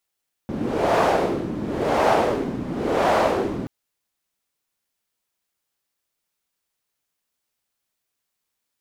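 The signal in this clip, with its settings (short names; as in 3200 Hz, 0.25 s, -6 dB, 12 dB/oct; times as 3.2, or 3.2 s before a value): wind-like swept noise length 3.18 s, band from 240 Hz, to 710 Hz, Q 1.8, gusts 3, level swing 10.5 dB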